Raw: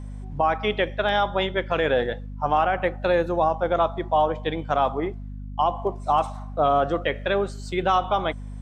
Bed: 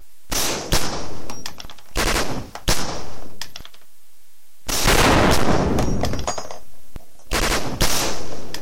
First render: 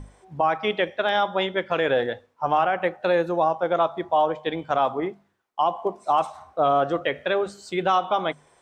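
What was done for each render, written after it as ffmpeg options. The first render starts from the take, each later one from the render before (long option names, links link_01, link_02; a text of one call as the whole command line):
ffmpeg -i in.wav -af "bandreject=frequency=50:width_type=h:width=6,bandreject=frequency=100:width_type=h:width=6,bandreject=frequency=150:width_type=h:width=6,bandreject=frequency=200:width_type=h:width=6,bandreject=frequency=250:width_type=h:width=6" out.wav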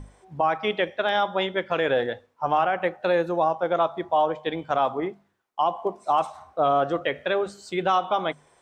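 ffmpeg -i in.wav -af "volume=-1dB" out.wav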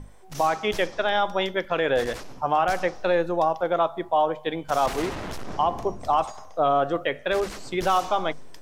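ffmpeg -i in.wav -i bed.wav -filter_complex "[1:a]volume=-18.5dB[link_01];[0:a][link_01]amix=inputs=2:normalize=0" out.wav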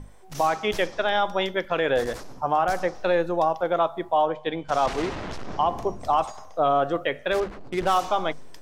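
ffmpeg -i in.wav -filter_complex "[0:a]asettb=1/sr,asplit=3[link_01][link_02][link_03];[link_01]atrim=end=1.984[link_04];[link_02]atrim=start=1.98:end=2.95,asetpts=PTS-STARTPTS,afade=type=in:duration=0.004:curve=qsin,afade=type=out:start_time=0.966:duration=0.004:curve=qsin,equalizer=frequency=2700:width=1.4:gain=-6[link_05];[link_03]atrim=start=2.946[link_06];[link_04][link_05]acrossfade=duration=0.004:curve1=hsin:curve2=qsin[link_07];[link_07][link_06]acrossfade=duration=0.004:curve1=qsin:curve2=hsin,asettb=1/sr,asplit=3[link_08][link_09][link_10];[link_08]atrim=end=4.254[link_11];[link_09]atrim=start=4.25:end=5.66,asetpts=PTS-STARTPTS,afade=type=in:duration=0.004:curve=qsin,afade=type=out:start_time=1.406:duration=0.004:curve=qsin,lowpass=6400[link_12];[link_10]atrim=start=5.656[link_13];[link_11][link_12]acrossfade=duration=0.004:curve1=hsin:curve2=qsin[link_14];[link_14][link_13]acrossfade=duration=0.004:curve1=qsin:curve2=hsin,asettb=1/sr,asplit=3[link_15][link_16][link_17];[link_15]atrim=end=7.404[link_18];[link_16]atrim=start=7.4:end=7.94,asetpts=PTS-STARTPTS,afade=type=in:duration=0.004:curve=qsin,afade=type=out:start_time=0.536:duration=0.004:curve=qsin,adynamicsmooth=sensitivity=4.5:basefreq=660[link_19];[link_17]atrim=start=7.936[link_20];[link_18][link_19]acrossfade=duration=0.004:curve1=hsin:curve2=qsin[link_21];[link_21][link_20]acrossfade=duration=0.004:curve1=qsin:curve2=hsin" out.wav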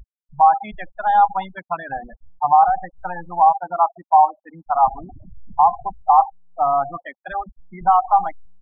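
ffmpeg -i in.wav -af "afftfilt=real='re*gte(hypot(re,im),0.112)':imag='im*gte(hypot(re,im),0.112)':win_size=1024:overlap=0.75,firequalizer=gain_entry='entry(110,0);entry(220,-1);entry(460,-26);entry(780,13);entry(1400,0);entry(3100,-12);entry(5700,-3);entry(9500,-12);entry(14000,-23)':delay=0.05:min_phase=1" out.wav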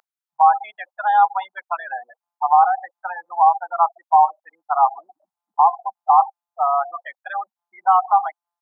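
ffmpeg -i in.wav -af "highpass=frequency=680:width=0.5412,highpass=frequency=680:width=1.3066,equalizer=frequency=1400:width_type=o:width=0.55:gain=3.5" out.wav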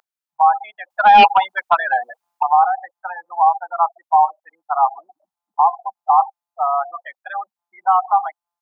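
ffmpeg -i in.wav -filter_complex "[0:a]asettb=1/sr,asplit=3[link_01][link_02][link_03];[link_01]atrim=end=0.904[link_04];[link_02]atrim=start=0.9:end=2.43,asetpts=PTS-STARTPTS,afade=type=in:duration=0.004:curve=qsin,afade=type=out:start_time=1.526:duration=0.004:curve=qsin,aeval=exprs='0.596*sin(PI/2*2.24*val(0)/0.596)':channel_layout=same[link_05];[link_03]atrim=start=2.426[link_06];[link_04][link_05]acrossfade=duration=0.004:curve1=hsin:curve2=qsin[link_07];[link_07][link_06]acrossfade=duration=0.004:curve1=qsin:curve2=hsin" out.wav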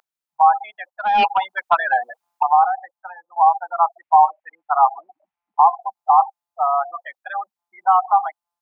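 ffmpeg -i in.wav -filter_complex "[0:a]asettb=1/sr,asplit=3[link_01][link_02][link_03];[link_01]atrim=end=4.004[link_04];[link_02]atrim=start=4:end=5.81,asetpts=PTS-STARTPTS,afade=type=in:duration=0.004:curve=qsin,afade=type=out:start_time=1.806:duration=0.004:curve=qsin,lowpass=frequency=2300:width_type=q:width=2.5[link_05];[link_03]atrim=start=5.806[link_06];[link_04][link_05]acrossfade=duration=0.004:curve1=hsin:curve2=qsin[link_07];[link_07][link_06]acrossfade=duration=0.004:curve1=qsin:curve2=hsin,asplit=3[link_08][link_09][link_10];[link_08]atrim=end=0.9,asetpts=PTS-STARTPTS,afade=type=out:start_time=0.896:duration=0.004:curve=hsin:silence=0.177828[link_11];[link_09]atrim=start=0.9:end=3.36,asetpts=PTS-STARTPTS,afade=type=in:duration=0.98:silence=0.177828,afade=type=out:start_time=1.57:duration=0.89:silence=0.188365[link_12];[link_10]atrim=start=3.36,asetpts=PTS-STARTPTS,afade=type=in:duration=0.004:curve=hsin:silence=0.188365[link_13];[link_11][link_12][link_13]concat=n=3:v=0:a=1" out.wav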